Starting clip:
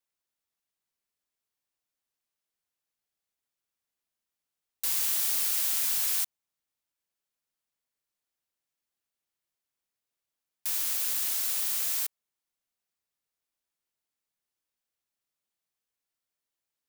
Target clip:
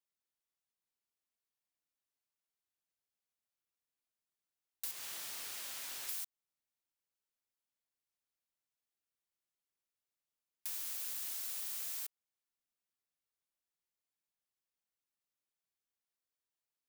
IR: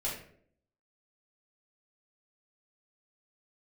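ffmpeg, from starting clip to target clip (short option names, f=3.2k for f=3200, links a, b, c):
-filter_complex "[0:a]asettb=1/sr,asplit=3[a][b][c];[a]atrim=end=4.914[d];[b]atrim=start=4.91:end=6.09,asetpts=PTS-STARTPTS,afade=t=in:d=0.004:c=qsin,afade=t=out:st=1.176:d=0.004:c=qsin,lowpass=f=3.3k:p=1[e];[c]atrim=start=6.086[f];[d][e]acrossfade=d=0.004:c1=hsin:c2=qsin[g];[g][f]acrossfade=d=0.004:c1=qsin:c2=hsin,acompressor=threshold=-31dB:ratio=5,volume=-7dB"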